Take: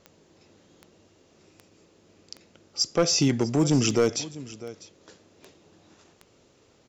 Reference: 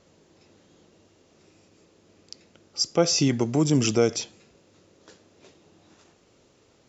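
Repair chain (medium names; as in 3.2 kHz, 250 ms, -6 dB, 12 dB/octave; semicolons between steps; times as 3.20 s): clip repair -14 dBFS; de-click; inverse comb 649 ms -18 dB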